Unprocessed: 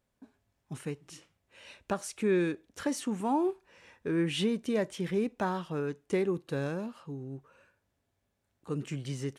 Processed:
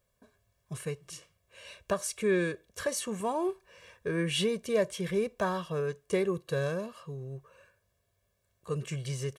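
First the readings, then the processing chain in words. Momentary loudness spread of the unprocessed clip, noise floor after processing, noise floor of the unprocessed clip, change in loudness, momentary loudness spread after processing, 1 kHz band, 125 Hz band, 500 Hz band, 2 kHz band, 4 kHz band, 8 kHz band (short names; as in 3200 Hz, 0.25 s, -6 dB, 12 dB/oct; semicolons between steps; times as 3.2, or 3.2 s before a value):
15 LU, -77 dBFS, -80 dBFS, +0.5 dB, 16 LU, -1.0 dB, +1.0 dB, +2.0 dB, +3.0 dB, +3.5 dB, +5.5 dB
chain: high shelf 7000 Hz +6.5 dB; comb 1.8 ms, depth 80%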